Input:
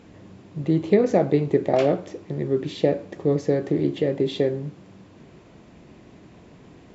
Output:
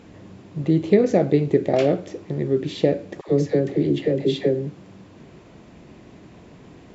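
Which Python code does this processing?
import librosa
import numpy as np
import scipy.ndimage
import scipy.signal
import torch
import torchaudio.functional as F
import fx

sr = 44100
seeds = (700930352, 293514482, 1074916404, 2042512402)

y = fx.dynamic_eq(x, sr, hz=1000.0, q=1.4, threshold_db=-39.0, ratio=4.0, max_db=-7)
y = fx.dispersion(y, sr, late='lows', ms=72.0, hz=650.0, at=(3.21, 4.67))
y = F.gain(torch.from_numpy(y), 2.5).numpy()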